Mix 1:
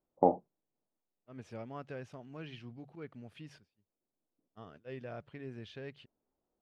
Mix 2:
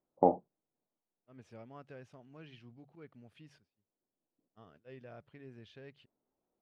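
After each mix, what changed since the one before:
second voice -7.0 dB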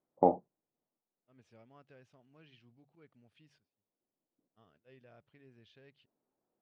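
second voice -9.0 dB; master: add bell 3600 Hz +4.5 dB 1.7 oct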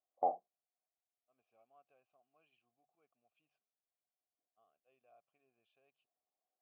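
master: add vowel filter a

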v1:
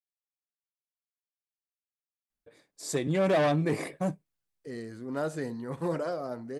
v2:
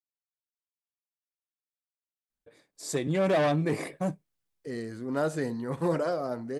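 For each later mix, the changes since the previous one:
second voice +3.5 dB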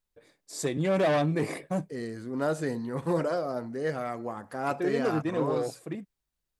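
first voice: entry -2.30 s; second voice: entry -2.75 s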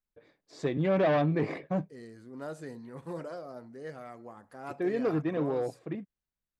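first voice: add air absorption 220 m; second voice -11.5 dB

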